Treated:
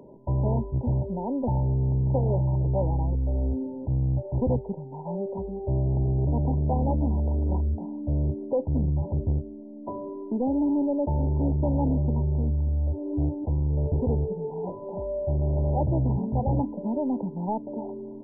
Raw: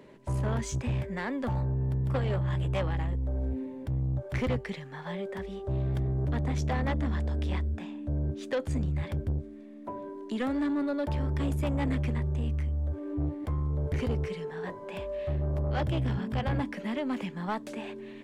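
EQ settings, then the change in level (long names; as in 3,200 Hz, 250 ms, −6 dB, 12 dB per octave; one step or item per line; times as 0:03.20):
linear-phase brick-wall low-pass 1,000 Hz
+5.0 dB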